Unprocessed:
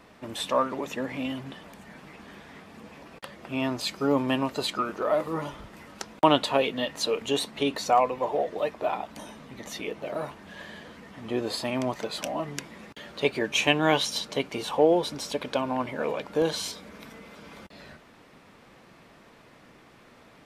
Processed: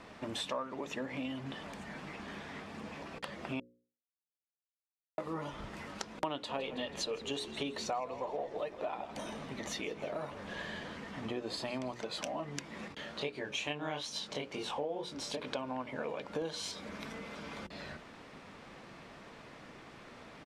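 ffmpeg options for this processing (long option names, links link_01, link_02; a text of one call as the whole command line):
ffmpeg -i in.wav -filter_complex "[0:a]asplit=3[link_01][link_02][link_03];[link_01]afade=type=out:start_time=6.48:duration=0.02[link_04];[link_02]asplit=6[link_05][link_06][link_07][link_08][link_09][link_10];[link_06]adelay=162,afreqshift=-58,volume=-16dB[link_11];[link_07]adelay=324,afreqshift=-116,volume=-21.2dB[link_12];[link_08]adelay=486,afreqshift=-174,volume=-26.4dB[link_13];[link_09]adelay=648,afreqshift=-232,volume=-31.6dB[link_14];[link_10]adelay=810,afreqshift=-290,volume=-36.8dB[link_15];[link_05][link_11][link_12][link_13][link_14][link_15]amix=inputs=6:normalize=0,afade=type=in:start_time=6.48:duration=0.02,afade=type=out:start_time=11.92:duration=0.02[link_16];[link_03]afade=type=in:start_time=11.92:duration=0.02[link_17];[link_04][link_16][link_17]amix=inputs=3:normalize=0,asettb=1/sr,asplit=3[link_18][link_19][link_20];[link_18]atrim=end=12.884[link_21];[link_19]atrim=start=12.88:end=15.47,asetpts=PTS-STARTPTS,afade=type=in:duration=0.004:curve=qsin,afade=type=out:start_time=2.586:duration=0.004:curve=qsin,flanger=delay=20:depth=7.8:speed=2.3[link_22];[link_20]atrim=start=15.466[link_23];[link_21][link_22]acrossfade=duration=0.004:curve1=hsin:curve2=qsin[link_24];[link_24][link_23]acrossfade=duration=0.004:curve1=qsin:curve2=hsin,asplit=3[link_25][link_26][link_27];[link_25]atrim=end=3.6,asetpts=PTS-STARTPTS,afade=type=out:start_time=3.596:duration=0.004:curve=hsin[link_28];[link_26]atrim=start=3.6:end=5.18,asetpts=PTS-STARTPTS,volume=0[link_29];[link_27]atrim=start=5.18,asetpts=PTS-STARTPTS,afade=type=in:duration=0.004:curve=hsin[link_30];[link_28][link_29][link_30]concat=n=3:v=0:a=1,lowpass=8100,bandreject=frequency=60:width_type=h:width=6,bandreject=frequency=120:width_type=h:width=6,bandreject=frequency=180:width_type=h:width=6,bandreject=frequency=240:width_type=h:width=6,bandreject=frequency=300:width_type=h:width=6,bandreject=frequency=360:width_type=h:width=6,bandreject=frequency=420:width_type=h:width=6,bandreject=frequency=480:width_type=h:width=6,bandreject=frequency=540:width_type=h:width=6,acompressor=threshold=-39dB:ratio=4,volume=2dB" out.wav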